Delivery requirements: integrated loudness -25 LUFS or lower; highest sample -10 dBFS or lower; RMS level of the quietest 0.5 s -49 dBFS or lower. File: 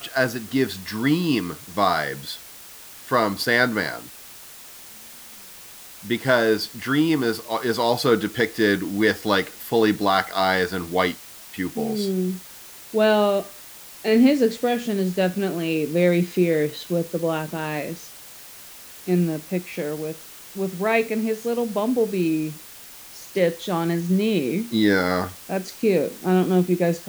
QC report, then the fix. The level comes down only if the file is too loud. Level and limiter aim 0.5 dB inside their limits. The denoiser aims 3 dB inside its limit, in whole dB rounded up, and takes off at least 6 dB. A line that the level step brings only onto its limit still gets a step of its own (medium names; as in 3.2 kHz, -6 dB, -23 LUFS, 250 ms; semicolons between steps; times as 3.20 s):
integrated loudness -22.5 LUFS: fail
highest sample -5.0 dBFS: fail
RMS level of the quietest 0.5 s -42 dBFS: fail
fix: noise reduction 7 dB, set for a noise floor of -42 dBFS; trim -3 dB; peak limiter -10.5 dBFS